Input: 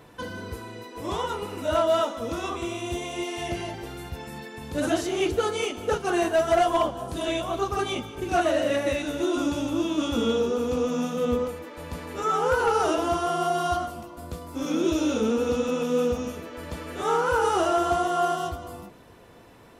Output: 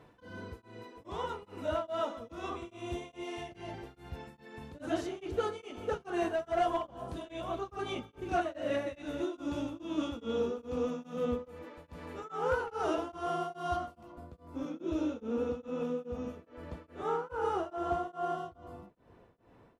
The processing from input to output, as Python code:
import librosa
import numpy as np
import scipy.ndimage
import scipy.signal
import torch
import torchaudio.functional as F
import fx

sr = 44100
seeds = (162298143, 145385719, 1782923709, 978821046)

y = fx.lowpass(x, sr, hz=fx.steps((0.0, 2800.0), (14.12, 1200.0)), slope=6)
y = y * np.abs(np.cos(np.pi * 2.4 * np.arange(len(y)) / sr))
y = y * librosa.db_to_amplitude(-6.5)